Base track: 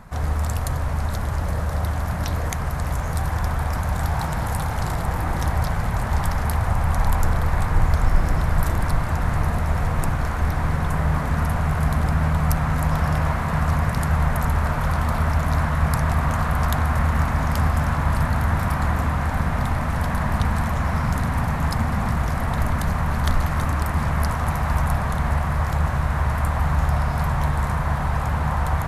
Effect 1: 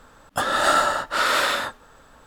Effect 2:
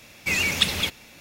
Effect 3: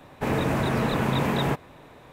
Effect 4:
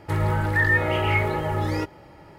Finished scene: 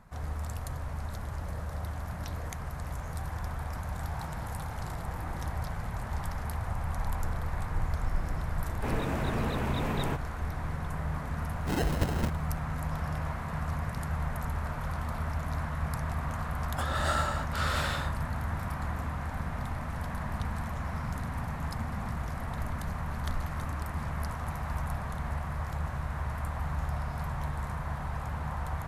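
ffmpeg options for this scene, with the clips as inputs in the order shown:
-filter_complex "[0:a]volume=-12.5dB[a];[3:a]asoftclip=type=tanh:threshold=-14dB[b];[2:a]acrusher=samples=38:mix=1:aa=0.000001[c];[b]atrim=end=2.12,asetpts=PTS-STARTPTS,volume=-7.5dB,afade=t=in:d=0.004:c=hsin,afade=t=out:st=2.116:d=0.004:c=hsin,adelay=8610[d];[c]atrim=end=1.2,asetpts=PTS-STARTPTS,volume=-7dB,afade=t=in:d=0.004:c=hsin,afade=t=out:st=1.196:d=0.004:c=hsin,adelay=11400[e];[1:a]atrim=end=2.26,asetpts=PTS-STARTPTS,volume=-12dB,afade=t=in:d=0.004:c=hsin,afade=t=out:st=2.256:d=0.004:c=hsin,adelay=16410[f];[a][d][e][f]amix=inputs=4:normalize=0"

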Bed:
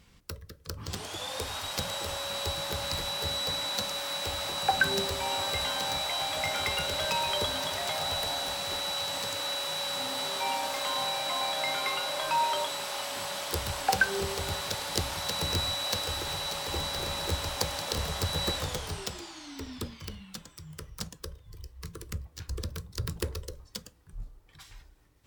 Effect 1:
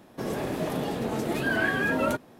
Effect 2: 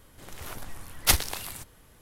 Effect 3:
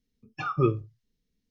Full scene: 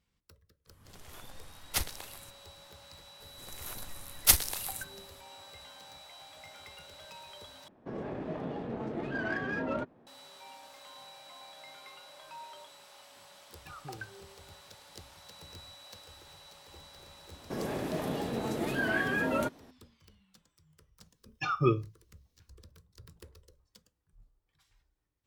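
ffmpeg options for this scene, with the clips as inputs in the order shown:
-filter_complex "[2:a]asplit=2[a][b];[1:a]asplit=2[c][d];[3:a]asplit=2[e][f];[0:a]volume=-20dB[g];[b]highshelf=f=5.9k:g=10.5[h];[c]adynamicsmooth=sensitivity=1:basefreq=2k[i];[e]acompressor=threshold=-27dB:ratio=6:attack=3.2:release=140:knee=1:detection=peak[j];[f]highshelf=f=2.3k:g=10[k];[g]asplit=2[l][m];[l]atrim=end=7.684[n];[i]atrim=end=2.39,asetpts=PTS-STARTPTS,volume=-7.5dB[o];[m]atrim=start=10.066[p];[a]atrim=end=2.01,asetpts=PTS-STARTPTS,volume=-10.5dB,afade=t=in:d=0.004:c=hsin,afade=t=out:st=2.006:d=0.004:c=hsin,adelay=670[q];[h]atrim=end=2.01,asetpts=PTS-STARTPTS,volume=-6.5dB,afade=t=in:d=0.004:c=hsin,afade=t=out:st=2.006:d=0.004:c=hsin,adelay=3200[r];[j]atrim=end=1.5,asetpts=PTS-STARTPTS,volume=-16dB,afade=t=in:d=0.004:c=hsin,afade=t=out:st=1.496:d=0.004:c=hsin,adelay=13270[s];[d]atrim=end=2.39,asetpts=PTS-STARTPTS,volume=-4.5dB,afade=t=in:d=0.004:c=hsin,afade=t=out:st=2.386:d=0.004:c=hsin,adelay=763812S[t];[k]atrim=end=1.5,asetpts=PTS-STARTPTS,volume=-3dB,afade=t=in:d=0.004:c=hsin,afade=t=out:st=1.496:d=0.004:c=hsin,adelay=21030[u];[n][o]acrossfade=d=0.004:c1=hsin:c2=hsin[v];[v][p]acrossfade=d=0.004:c1=hsin:c2=hsin[w];[w][q][r][s][t][u]amix=inputs=6:normalize=0"

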